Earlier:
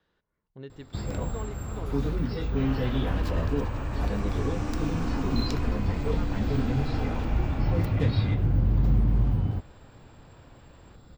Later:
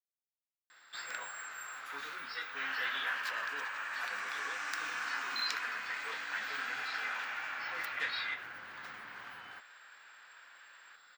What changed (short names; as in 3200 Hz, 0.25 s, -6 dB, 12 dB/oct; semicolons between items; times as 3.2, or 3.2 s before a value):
speech: muted; master: add resonant high-pass 1600 Hz, resonance Q 3.1